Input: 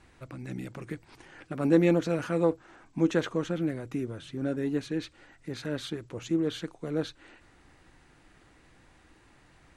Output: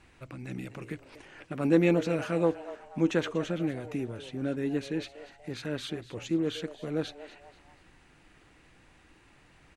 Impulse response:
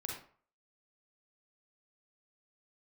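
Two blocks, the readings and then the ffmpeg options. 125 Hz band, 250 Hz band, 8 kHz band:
-1.0 dB, -1.0 dB, -0.5 dB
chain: -filter_complex "[0:a]equalizer=f=2.6k:w=2.7:g=5,asplit=4[a][b][c][d];[b]adelay=241,afreqshift=140,volume=-16dB[e];[c]adelay=482,afreqshift=280,volume=-24.2dB[f];[d]adelay=723,afreqshift=420,volume=-32.4dB[g];[a][e][f][g]amix=inputs=4:normalize=0,volume=-1dB"

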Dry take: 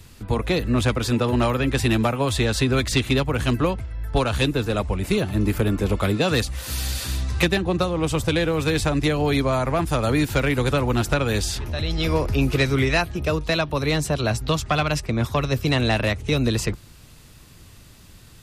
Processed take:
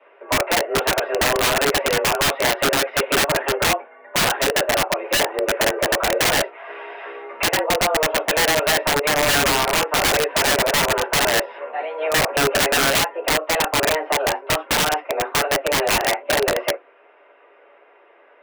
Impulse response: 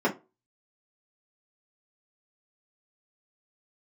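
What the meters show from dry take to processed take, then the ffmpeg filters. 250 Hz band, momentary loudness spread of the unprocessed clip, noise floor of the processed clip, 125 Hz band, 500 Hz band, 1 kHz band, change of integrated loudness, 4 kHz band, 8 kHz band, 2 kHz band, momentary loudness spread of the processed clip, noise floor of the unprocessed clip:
-6.5 dB, 5 LU, -52 dBFS, -12.0 dB, +3.0 dB, +7.0 dB, +3.5 dB, +7.0 dB, +10.0 dB, +7.5 dB, 7 LU, -47 dBFS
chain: -filter_complex "[0:a]highpass=f=360:t=q:w=0.5412,highpass=f=360:t=q:w=1.307,lowpass=f=2.6k:t=q:w=0.5176,lowpass=f=2.6k:t=q:w=0.7071,lowpass=f=2.6k:t=q:w=1.932,afreqshift=150[a];[1:a]atrim=start_sample=2205,atrim=end_sample=4410[b];[a][b]afir=irnorm=-1:irlink=0,aeval=exprs='(mod(1.78*val(0)+1,2)-1)/1.78':c=same,volume=-7.5dB"

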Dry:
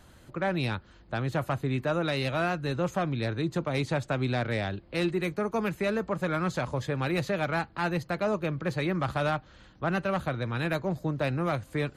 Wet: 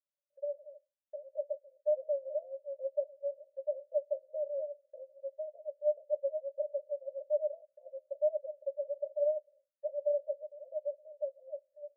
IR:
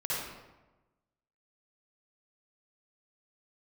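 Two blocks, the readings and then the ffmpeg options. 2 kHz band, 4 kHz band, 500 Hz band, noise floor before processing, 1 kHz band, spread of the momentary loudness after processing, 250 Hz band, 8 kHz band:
under -40 dB, under -40 dB, -2.5 dB, -55 dBFS, under -30 dB, 12 LU, under -40 dB, under -30 dB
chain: -af "dynaudnorm=f=120:g=21:m=7dB,asuperpass=centerf=580:order=8:qfactor=7.3,agate=range=-33dB:threshold=-52dB:ratio=3:detection=peak,volume=-4.5dB"

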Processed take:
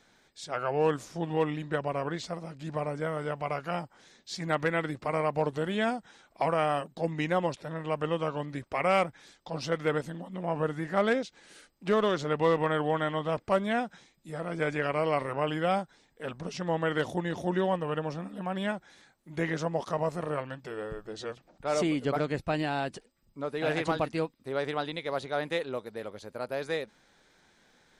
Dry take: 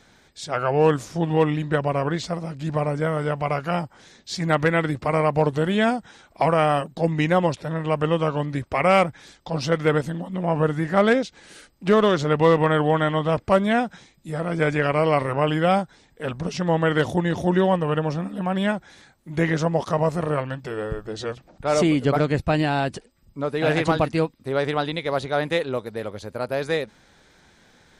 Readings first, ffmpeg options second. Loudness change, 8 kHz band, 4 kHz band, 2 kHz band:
-8.5 dB, -7.5 dB, -7.5 dB, -7.5 dB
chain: -af "equalizer=f=72:w=0.64:g=-8.5,volume=-7.5dB"

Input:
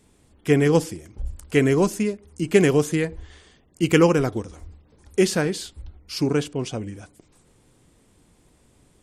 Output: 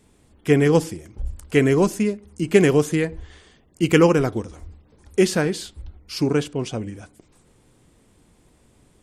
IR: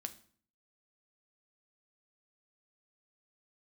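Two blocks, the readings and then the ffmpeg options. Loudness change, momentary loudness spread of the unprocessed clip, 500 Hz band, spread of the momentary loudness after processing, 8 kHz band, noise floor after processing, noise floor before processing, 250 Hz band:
+1.5 dB, 18 LU, +1.5 dB, 18 LU, -0.5 dB, -58 dBFS, -59 dBFS, +1.5 dB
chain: -filter_complex "[0:a]asplit=2[a][b];[1:a]atrim=start_sample=2205,lowpass=4.4k[c];[b][c]afir=irnorm=-1:irlink=0,volume=-11dB[d];[a][d]amix=inputs=2:normalize=0"

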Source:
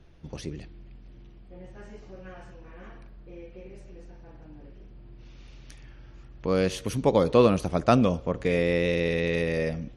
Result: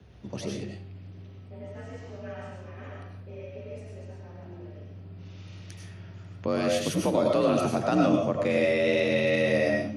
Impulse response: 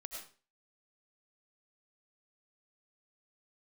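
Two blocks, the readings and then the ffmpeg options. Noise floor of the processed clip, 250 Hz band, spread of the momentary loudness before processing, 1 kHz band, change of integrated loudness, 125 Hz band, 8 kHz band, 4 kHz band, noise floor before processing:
-45 dBFS, 0.0 dB, 17 LU, -1.5 dB, -0.5 dB, -3.0 dB, +3.0 dB, +1.5 dB, -49 dBFS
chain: -filter_complex "[0:a]afreqshift=51,alimiter=limit=-17dB:level=0:latency=1:release=64[a];[1:a]atrim=start_sample=2205[b];[a][b]afir=irnorm=-1:irlink=0,volume=7dB"

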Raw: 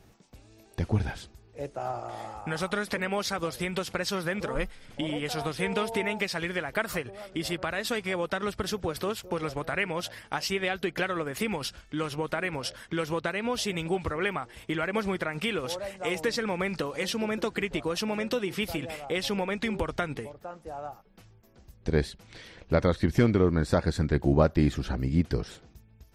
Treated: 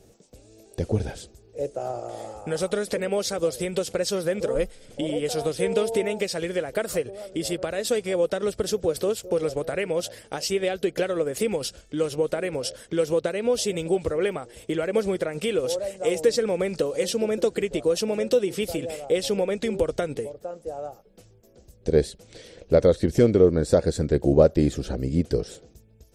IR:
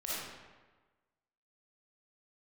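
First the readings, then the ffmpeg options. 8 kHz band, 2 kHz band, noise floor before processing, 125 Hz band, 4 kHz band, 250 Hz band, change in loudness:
+7.0 dB, -4.0 dB, -57 dBFS, +0.5 dB, +1.0 dB, +3.0 dB, +4.5 dB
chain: -af "equalizer=f=500:t=o:w=1:g=12,equalizer=f=1k:t=o:w=1:g=-8,equalizer=f=2k:t=o:w=1:g=-4,equalizer=f=8k:t=o:w=1:g=9"

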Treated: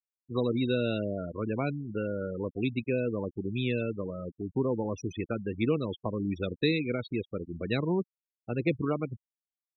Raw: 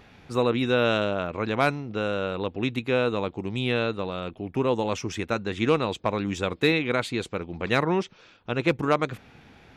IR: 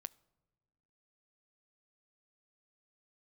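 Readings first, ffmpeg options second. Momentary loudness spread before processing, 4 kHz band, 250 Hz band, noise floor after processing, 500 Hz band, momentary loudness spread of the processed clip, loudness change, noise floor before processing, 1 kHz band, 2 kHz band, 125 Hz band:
9 LU, -9.0 dB, -3.0 dB, under -85 dBFS, -6.0 dB, 8 LU, -5.5 dB, -54 dBFS, -13.0 dB, -10.0 dB, -2.0 dB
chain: -filter_complex "[0:a]acrossover=split=430|3000[a][b][c];[b]acompressor=threshold=-34dB:ratio=4[d];[a][d][c]amix=inputs=3:normalize=0,afftfilt=real='re*gte(hypot(re,im),0.0562)':imag='im*gte(hypot(re,im),0.0562)':win_size=1024:overlap=0.75,volume=-2dB"

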